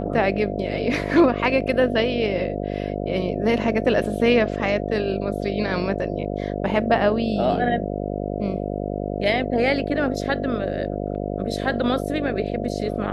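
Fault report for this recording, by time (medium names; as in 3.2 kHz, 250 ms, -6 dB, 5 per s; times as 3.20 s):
buzz 50 Hz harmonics 14 -27 dBFS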